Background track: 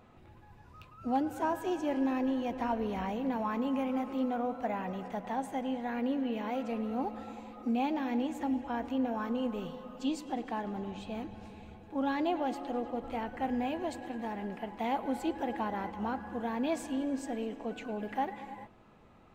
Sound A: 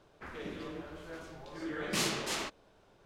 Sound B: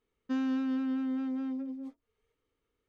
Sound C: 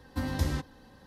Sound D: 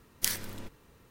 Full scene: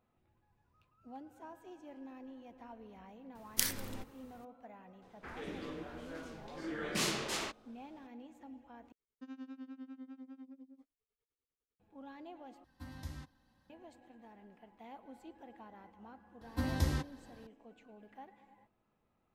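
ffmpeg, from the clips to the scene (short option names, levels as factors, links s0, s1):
-filter_complex "[3:a]asplit=2[s0][s1];[0:a]volume=0.106[s2];[2:a]tremolo=f=10:d=0.92[s3];[s0]equalizer=f=440:w=2.8:g=-12[s4];[s2]asplit=3[s5][s6][s7];[s5]atrim=end=8.924[s8];[s3]atrim=end=2.88,asetpts=PTS-STARTPTS,volume=0.211[s9];[s6]atrim=start=11.796:end=12.644[s10];[s4]atrim=end=1.06,asetpts=PTS-STARTPTS,volume=0.158[s11];[s7]atrim=start=13.696[s12];[4:a]atrim=end=1.1,asetpts=PTS-STARTPTS,volume=0.75,afade=t=in:d=0.004:c=hsin,afade=t=out:st=1.096:d=0.004:c=hsin,adelay=3350[s13];[1:a]atrim=end=3.05,asetpts=PTS-STARTPTS,volume=0.794,afade=t=in:d=0.004:c=hsin,afade=t=out:st=3.046:d=0.004:c=hsin,adelay=5020[s14];[s1]atrim=end=1.06,asetpts=PTS-STARTPTS,volume=0.708,afade=t=in:d=0.004:c=hsin,afade=t=out:st=1.056:d=0.004:c=hsin,adelay=16410[s15];[s8][s9]acrossfade=d=0.004:c1=hsin:c2=hsin[s16];[s16][s10]acrossfade=d=0.004:c1=hsin:c2=hsin[s17];[s17][s11]acrossfade=d=0.004:c1=hsin:c2=hsin[s18];[s18][s12]acrossfade=d=0.004:c1=hsin:c2=hsin[s19];[s19][s13][s14][s15]amix=inputs=4:normalize=0"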